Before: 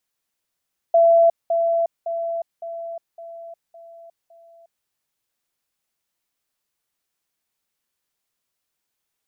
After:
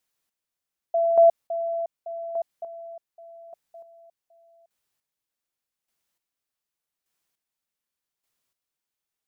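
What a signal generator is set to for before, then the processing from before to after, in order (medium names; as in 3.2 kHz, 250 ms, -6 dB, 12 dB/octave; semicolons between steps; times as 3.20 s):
level ladder 671 Hz -10.5 dBFS, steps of -6 dB, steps 7, 0.36 s 0.20 s
square tremolo 0.85 Hz, depth 60%, duty 25%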